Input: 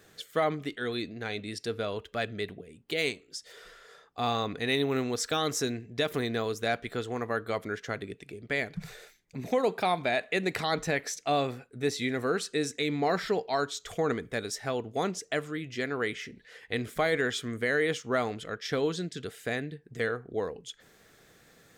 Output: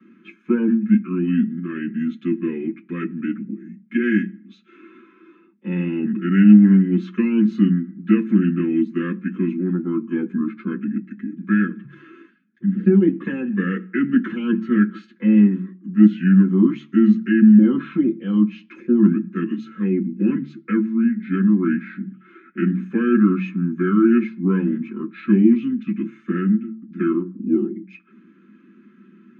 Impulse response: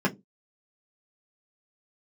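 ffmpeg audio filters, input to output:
-filter_complex "[0:a]asplit=3[a][b][c];[a]bandpass=f=270:t=q:w=8,volume=0dB[d];[b]bandpass=f=2.29k:t=q:w=8,volume=-6dB[e];[c]bandpass=f=3.01k:t=q:w=8,volume=-9dB[f];[d][e][f]amix=inputs=3:normalize=0,equalizer=f=470:w=3.2:g=12,bandreject=f=50:t=h:w=6,bandreject=f=100:t=h:w=6,bandreject=f=150:t=h:w=6,bandreject=f=200:t=h:w=6,bandreject=f=250:t=h:w=6,bandreject=f=300:t=h:w=6,acrossover=split=110|590|2200[g][h][i][j];[h]asoftclip=type=tanh:threshold=-20.5dB[k];[g][k][i][j]amix=inputs=4:normalize=0[l];[1:a]atrim=start_sample=2205,asetrate=74970,aresample=44100[m];[l][m]afir=irnorm=-1:irlink=0,asetrate=32667,aresample=44100,volume=6.5dB"

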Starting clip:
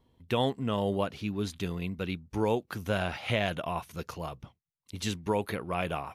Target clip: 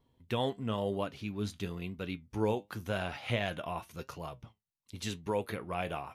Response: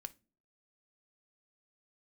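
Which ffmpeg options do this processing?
-af "flanger=delay=6.8:depth=3.4:regen=70:speed=0.96:shape=triangular"

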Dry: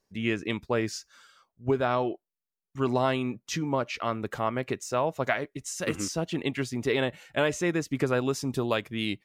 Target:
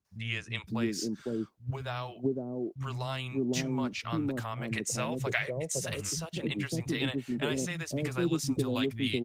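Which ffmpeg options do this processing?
-filter_complex "[0:a]asettb=1/sr,asplit=3[a][b][c];[a]atrim=end=4.644[d];[b]atrim=start=4.64:end=5.67,asetpts=PTS-STARTPTS,afade=t=in:d=0.004:c=qsin,afade=t=out:st=1.026:d=0.004:c=qsin,equalizer=f=125:t=o:w=1:g=6,equalizer=f=250:t=o:w=1:g=-11,equalizer=f=500:t=o:w=1:g=9,equalizer=f=2k:t=o:w=1:g=10,equalizer=f=8k:t=o:w=1:g=7[e];[c]atrim=start=5.666[f];[d][e]acrossfade=d=0.004:c1=hsin:c2=qsin[g];[g][f]acrossfade=d=0.004:c1=qsin:c2=hsin,acrossover=split=310|3000[h][i][j];[i]acompressor=threshold=-41dB:ratio=2.5[k];[h][k][j]amix=inputs=3:normalize=0,asettb=1/sr,asplit=3[l][m][n];[l]atrim=end=6.244[o];[m]atrim=start=6.24:end=7,asetpts=PTS-STARTPTS,afade=t=in:d=0.004:c=qsin,afade=t=out:st=0.756:d=0.004:c=qsin,adynamicequalizer=threshold=0.00794:dfrequency=390:dqfactor=3.4:tfrequency=390:tqfactor=3.4:attack=5:release=100:ratio=0.375:range=1.5:mode=cutabove:tftype=bell[p];[n]atrim=start=6.996[q];[o][p]acrossfade=d=0.004:c1=hsin:c2=qsin[r];[r][q]acrossfade=d=0.004:c1=qsin:c2=hsin,asettb=1/sr,asplit=3[s][t][u];[s]atrim=end=7.644[v];[t]atrim=start=7.64:end=8.35,asetpts=PTS-STARTPTS,afade=t=in:d=0.004:c=qsin,afade=t=out:st=0.706:d=0.004:c=qsin,asplit=2[w][x];[x]adelay=12,volume=-10.5dB[y];[w][y]amix=inputs=2:normalize=0,atrim=end_sample=31311[z];[u]atrim=start=8.346[aa];[v][z]acrossfade=d=0.004:c1=hsin:c2=qsin[ab];[ab][aa]acrossfade=d=0.004:c1=qsin:c2=hsin,highpass=f=66:w=0.5412,highpass=f=66:w=1.3066,acrossover=split=150|580[ac][ad][ae];[ae]adelay=50[af];[ad]adelay=560[ag];[ac][ag][af]amix=inputs=3:normalize=0,volume=2.5dB" -ar 48000 -c:a libopus -b:a 20k

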